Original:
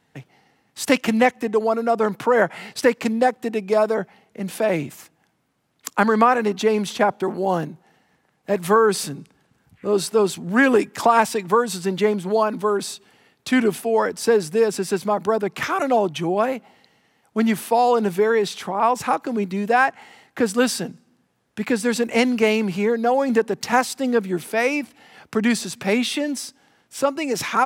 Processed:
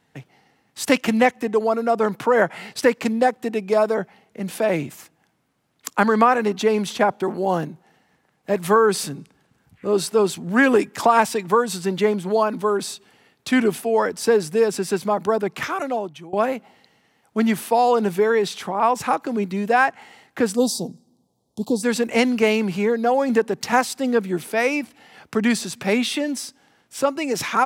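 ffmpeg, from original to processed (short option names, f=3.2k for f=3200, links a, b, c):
-filter_complex "[0:a]asplit=3[a][b][c];[a]afade=t=out:st=20.55:d=0.02[d];[b]asuperstop=centerf=1900:order=8:qfactor=0.69,afade=t=in:st=20.55:d=0.02,afade=t=out:st=21.82:d=0.02[e];[c]afade=t=in:st=21.82:d=0.02[f];[d][e][f]amix=inputs=3:normalize=0,asplit=2[g][h];[g]atrim=end=16.33,asetpts=PTS-STARTPTS,afade=t=out:st=15.46:d=0.87:silence=0.0841395[i];[h]atrim=start=16.33,asetpts=PTS-STARTPTS,afade=t=in:d=0.004:c=hsin:silence=0.0841395[j];[i][j]concat=n=2:v=0:a=1"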